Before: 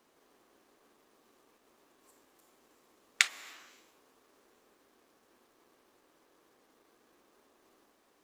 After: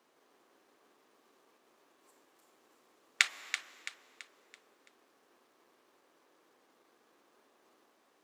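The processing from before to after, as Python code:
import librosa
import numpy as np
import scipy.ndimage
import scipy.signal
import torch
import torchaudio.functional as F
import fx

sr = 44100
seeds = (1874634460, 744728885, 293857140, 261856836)

y = fx.highpass(x, sr, hz=300.0, slope=6)
y = fx.high_shelf(y, sr, hz=6600.0, db=-6.0)
y = fx.echo_feedback(y, sr, ms=333, feedback_pct=42, wet_db=-9.5)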